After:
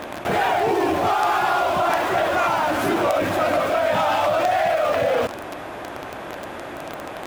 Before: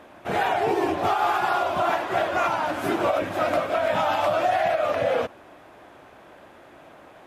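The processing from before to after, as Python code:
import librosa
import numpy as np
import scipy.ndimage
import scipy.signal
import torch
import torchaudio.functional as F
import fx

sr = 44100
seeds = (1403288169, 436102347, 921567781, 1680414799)

p1 = fx.quant_companded(x, sr, bits=2)
p2 = x + (p1 * librosa.db_to_amplitude(-10.5))
y = fx.env_flatten(p2, sr, amount_pct=50)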